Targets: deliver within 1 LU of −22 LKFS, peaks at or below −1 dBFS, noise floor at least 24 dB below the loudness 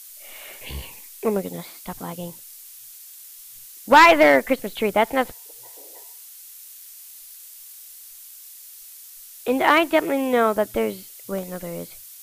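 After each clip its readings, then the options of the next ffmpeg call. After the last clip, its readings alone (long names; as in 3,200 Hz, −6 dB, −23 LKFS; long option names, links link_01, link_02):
background noise floor −43 dBFS; target noise floor −44 dBFS; integrated loudness −19.5 LKFS; sample peak −4.0 dBFS; target loudness −22.0 LKFS
→ -af "afftdn=noise_reduction=6:noise_floor=-43"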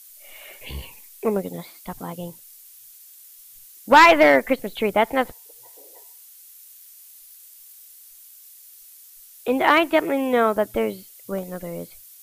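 background noise floor −47 dBFS; integrated loudness −19.5 LKFS; sample peak −4.0 dBFS; target loudness −22.0 LKFS
→ -af "volume=-2.5dB"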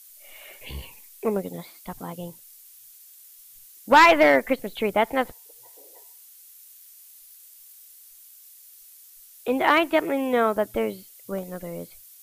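integrated loudness −22.0 LKFS; sample peak −6.5 dBFS; background noise floor −50 dBFS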